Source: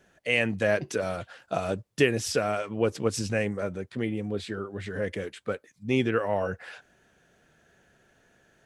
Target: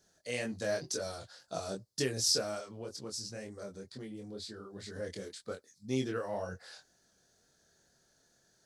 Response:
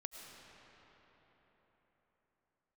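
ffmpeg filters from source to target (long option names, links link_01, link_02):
-filter_complex "[0:a]highshelf=frequency=3500:width_type=q:width=3:gain=9.5,asettb=1/sr,asplit=3[link_01][link_02][link_03];[link_01]atrim=end=2.584[link_04];[link_02]atrim=start=2.58:end=4.7,asetpts=PTS-STARTPTS,afade=type=in:duration=0.004:curve=qsin,afade=type=out:start_time=2.116:duration=0.004:curve=qsin,acompressor=threshold=-32dB:ratio=2.5[link_05];[link_03]atrim=start=4.696[link_06];[link_04][link_05]acrossfade=duration=0.004:curve1=hsin:curve2=qsin[link_07];[link_07][link_06]acrossfade=duration=0.004:curve1=qsin:curve2=hsin,flanger=delay=22.5:depth=3.3:speed=2,volume=-6.5dB"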